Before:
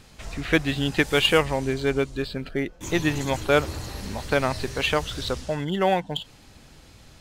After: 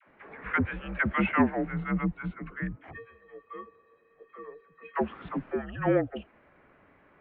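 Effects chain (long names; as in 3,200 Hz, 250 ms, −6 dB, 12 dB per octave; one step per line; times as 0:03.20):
0:02.90–0:04.95: tuned comb filter 690 Hz, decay 0.18 s, harmonics all, mix 100%
all-pass dispersion lows, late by 97 ms, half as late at 550 Hz
single-sideband voice off tune −230 Hz 380–2,300 Hz
level −2 dB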